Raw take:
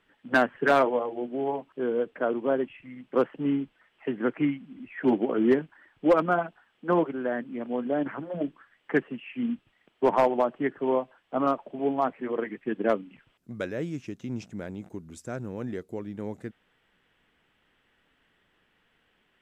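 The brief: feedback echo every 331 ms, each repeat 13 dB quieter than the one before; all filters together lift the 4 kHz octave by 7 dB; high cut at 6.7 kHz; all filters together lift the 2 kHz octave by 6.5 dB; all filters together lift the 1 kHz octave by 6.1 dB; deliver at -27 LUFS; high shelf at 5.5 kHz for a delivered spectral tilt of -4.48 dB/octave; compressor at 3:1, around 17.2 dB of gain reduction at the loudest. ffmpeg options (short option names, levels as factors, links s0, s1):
-af "lowpass=6700,equalizer=f=1000:t=o:g=6.5,equalizer=f=2000:t=o:g=4.5,equalizer=f=4000:t=o:g=5.5,highshelf=f=5500:g=5.5,acompressor=threshold=0.0158:ratio=3,aecho=1:1:331|662|993:0.224|0.0493|0.0108,volume=3.55"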